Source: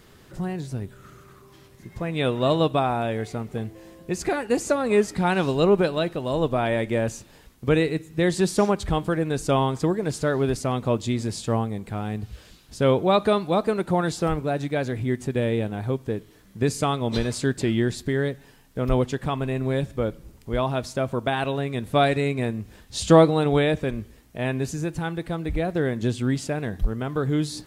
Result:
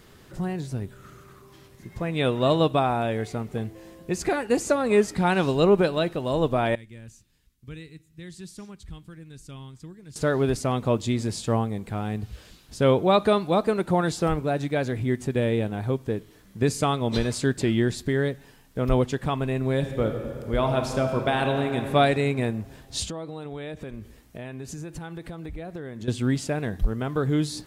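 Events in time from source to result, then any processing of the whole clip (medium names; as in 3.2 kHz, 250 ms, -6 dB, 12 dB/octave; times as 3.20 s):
6.75–10.16 s: amplifier tone stack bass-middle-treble 6-0-2
19.73–21.83 s: reverb throw, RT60 2.6 s, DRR 4.5 dB
23.04–26.08 s: compression 5:1, threshold -33 dBFS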